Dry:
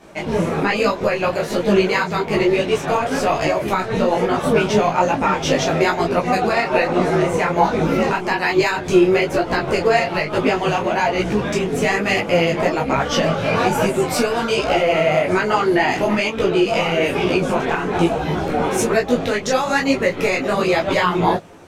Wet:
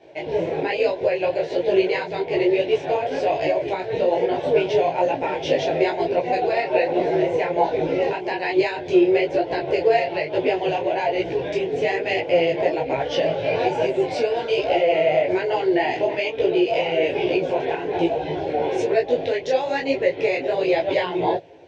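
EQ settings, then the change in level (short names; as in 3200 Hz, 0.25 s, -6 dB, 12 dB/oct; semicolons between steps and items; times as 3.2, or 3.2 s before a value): BPF 130–4000 Hz; air absorption 95 m; fixed phaser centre 510 Hz, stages 4; 0.0 dB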